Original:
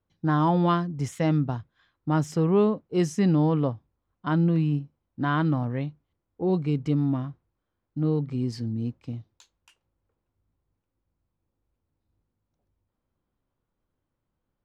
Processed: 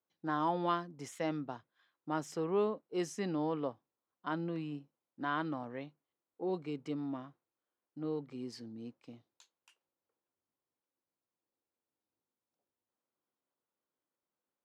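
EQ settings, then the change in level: HPF 340 Hz 12 dB/oct; -7.5 dB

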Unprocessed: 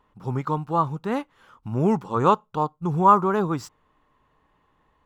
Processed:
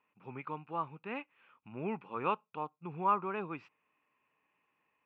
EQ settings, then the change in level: HPF 190 Hz 12 dB/oct; ladder low-pass 2600 Hz, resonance 85%; -2.5 dB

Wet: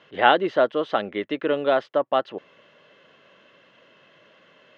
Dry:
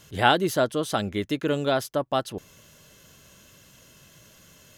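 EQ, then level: speaker cabinet 240–3600 Hz, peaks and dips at 530 Hz +3 dB, 1200 Hz +3 dB, 1900 Hz +6 dB, 2900 Hz +4 dB; bell 640 Hz +6.5 dB 2.6 oct; -3.5 dB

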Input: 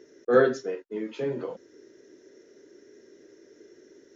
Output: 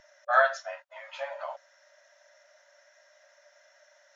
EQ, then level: brick-wall FIR high-pass 560 Hz; tilt -3 dB/oct; +7.5 dB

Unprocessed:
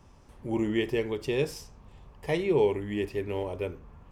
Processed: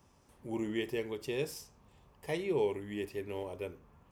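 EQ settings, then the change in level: HPF 110 Hz 6 dB/oct; high shelf 8200 Hz +11 dB; -7.0 dB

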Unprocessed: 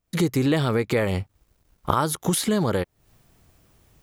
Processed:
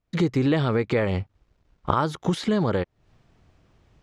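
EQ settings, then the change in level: air absorption 140 m; 0.0 dB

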